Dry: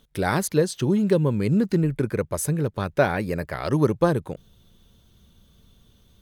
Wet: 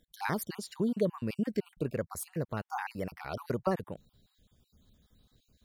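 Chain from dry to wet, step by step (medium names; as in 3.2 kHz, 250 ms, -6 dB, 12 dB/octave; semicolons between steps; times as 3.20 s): random holes in the spectrogram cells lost 35%; tape speed +10%; trim -8.5 dB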